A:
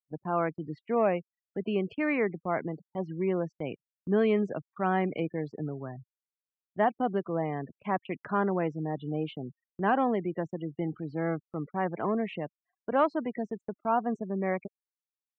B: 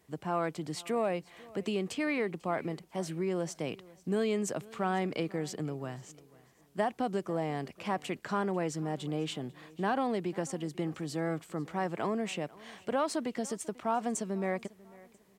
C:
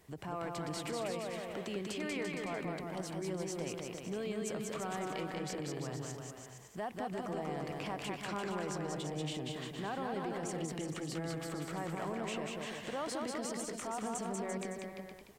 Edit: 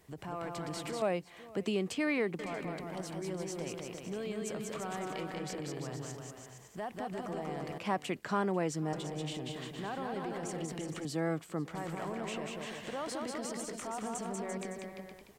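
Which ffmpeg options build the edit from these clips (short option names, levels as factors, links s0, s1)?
-filter_complex "[1:a]asplit=3[s0][s1][s2];[2:a]asplit=4[s3][s4][s5][s6];[s3]atrim=end=1.022[s7];[s0]atrim=start=1.018:end=2.392[s8];[s4]atrim=start=2.388:end=7.782[s9];[s1]atrim=start=7.778:end=8.932[s10];[s5]atrim=start=8.928:end=11.052[s11];[s2]atrim=start=11.048:end=11.752[s12];[s6]atrim=start=11.748[s13];[s7][s8]acrossfade=d=0.004:c1=hsin:c2=hsin[s14];[s14][s9]acrossfade=d=0.004:c1=hsin:c2=hsin[s15];[s15][s10]acrossfade=d=0.004:c1=hsin:c2=hsin[s16];[s16][s11]acrossfade=d=0.004:c1=hsin:c2=hsin[s17];[s17][s12]acrossfade=d=0.004:c1=hsin:c2=hsin[s18];[s18][s13]acrossfade=d=0.004:c1=hsin:c2=hsin"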